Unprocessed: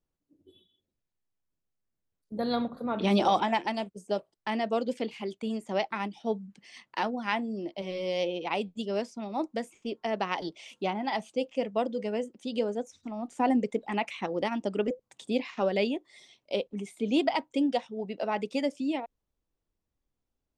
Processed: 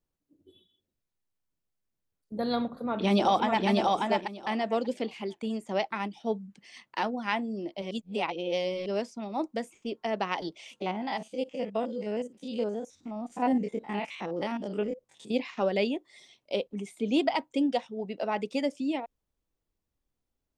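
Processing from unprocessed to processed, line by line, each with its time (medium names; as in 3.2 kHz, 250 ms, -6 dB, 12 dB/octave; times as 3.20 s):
2.65–3.68 s: echo throw 590 ms, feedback 15%, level -2 dB
7.91–8.86 s: reverse
10.76–15.34 s: spectrogram pixelated in time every 50 ms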